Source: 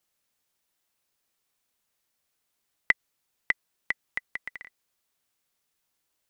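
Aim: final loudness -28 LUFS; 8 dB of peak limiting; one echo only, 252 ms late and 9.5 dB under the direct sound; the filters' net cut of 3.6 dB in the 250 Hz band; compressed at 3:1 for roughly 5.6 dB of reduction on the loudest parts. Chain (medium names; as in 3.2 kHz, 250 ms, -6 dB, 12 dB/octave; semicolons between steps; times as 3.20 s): peaking EQ 250 Hz -5 dB; compression 3:1, threshold -28 dBFS; peak limiter -15.5 dBFS; delay 252 ms -9.5 dB; trim +13 dB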